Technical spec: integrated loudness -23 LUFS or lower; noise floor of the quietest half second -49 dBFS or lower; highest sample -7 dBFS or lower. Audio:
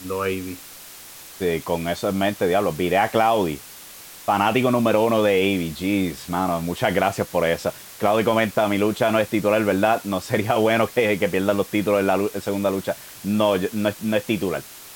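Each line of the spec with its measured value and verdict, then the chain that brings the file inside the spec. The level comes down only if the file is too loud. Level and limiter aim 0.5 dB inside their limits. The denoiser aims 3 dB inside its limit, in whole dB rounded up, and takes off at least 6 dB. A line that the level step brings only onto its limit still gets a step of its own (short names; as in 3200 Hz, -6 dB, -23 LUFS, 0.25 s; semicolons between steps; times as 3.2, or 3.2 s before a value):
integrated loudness -21.5 LUFS: fail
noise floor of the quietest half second -41 dBFS: fail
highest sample -5.0 dBFS: fail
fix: denoiser 9 dB, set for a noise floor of -41 dBFS; gain -2 dB; limiter -7.5 dBFS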